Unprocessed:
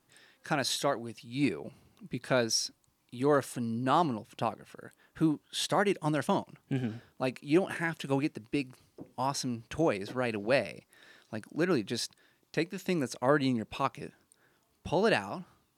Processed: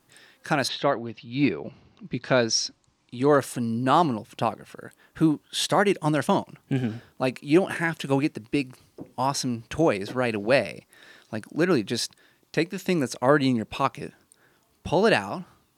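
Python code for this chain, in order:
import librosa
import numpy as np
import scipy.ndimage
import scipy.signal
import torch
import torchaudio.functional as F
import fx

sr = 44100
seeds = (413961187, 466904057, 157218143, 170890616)

y = fx.lowpass(x, sr, hz=fx.line((0.67, 3500.0), (3.37, 8700.0)), slope=24, at=(0.67, 3.37), fade=0.02)
y = F.gain(torch.from_numpy(y), 6.5).numpy()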